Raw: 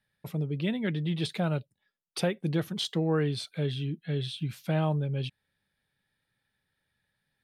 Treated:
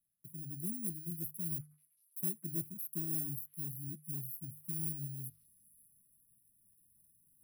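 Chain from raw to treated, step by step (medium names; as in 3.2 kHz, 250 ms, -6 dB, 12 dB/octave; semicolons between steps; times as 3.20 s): bit-reversed sample order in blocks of 32 samples; Chebyshev band-stop 360–9800 Hz, order 5; resonant low shelf 690 Hz -8 dB, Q 3; hum notches 50/100/150 Hz; reverse; upward compressor, threshold -51 dBFS; reverse; saturation -22 dBFS, distortion -23 dB; on a send: repeats whose band climbs or falls 192 ms, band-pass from 1.6 kHz, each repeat 0.7 oct, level -11 dB; on the sum: random flutter of the level, depth 60%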